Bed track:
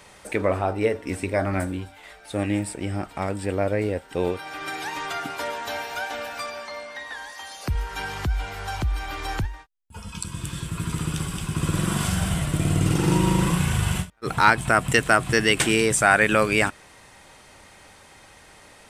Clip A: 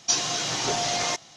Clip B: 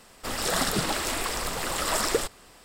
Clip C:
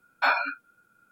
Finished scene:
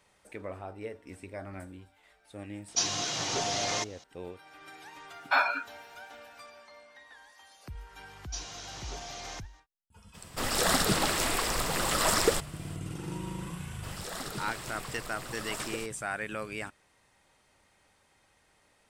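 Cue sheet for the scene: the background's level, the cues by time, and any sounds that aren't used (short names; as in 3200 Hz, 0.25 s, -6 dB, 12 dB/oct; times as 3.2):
bed track -17.5 dB
2.68 add A -5 dB
5.09 add C -2 dB
8.24 add A -16.5 dB
10.13 add B, fades 0.02 s
13.59 add B -13 dB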